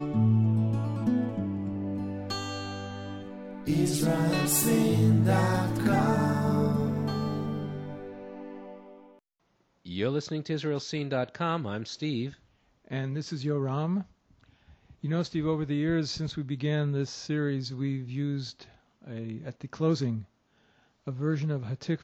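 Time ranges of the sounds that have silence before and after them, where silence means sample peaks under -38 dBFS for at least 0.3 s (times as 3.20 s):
9.86–12.30 s
12.91–14.02 s
15.04–18.62 s
19.07–20.22 s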